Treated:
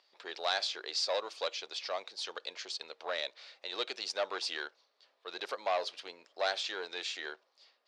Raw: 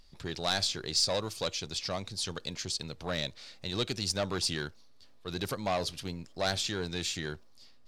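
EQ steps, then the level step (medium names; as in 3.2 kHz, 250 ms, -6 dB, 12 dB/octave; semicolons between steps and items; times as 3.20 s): high-pass 470 Hz 24 dB/octave; low-pass 3.9 kHz 12 dB/octave; 0.0 dB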